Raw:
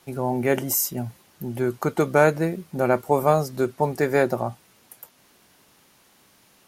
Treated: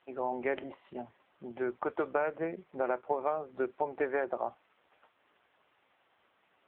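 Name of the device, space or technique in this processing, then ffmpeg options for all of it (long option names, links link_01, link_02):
voicemail: -af "highpass=420,lowpass=2800,acompressor=threshold=-22dB:ratio=12,volume=-3.5dB" -ar 8000 -c:a libopencore_amrnb -b:a 5900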